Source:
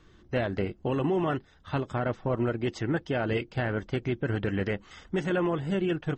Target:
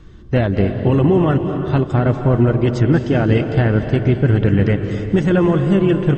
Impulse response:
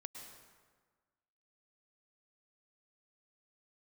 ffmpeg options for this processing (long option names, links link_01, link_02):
-filter_complex "[0:a]lowshelf=frequency=290:gain=11.5,asplit=2[link_01][link_02];[1:a]atrim=start_sample=2205,asetrate=25578,aresample=44100[link_03];[link_02][link_03]afir=irnorm=-1:irlink=0,volume=5dB[link_04];[link_01][link_04]amix=inputs=2:normalize=0"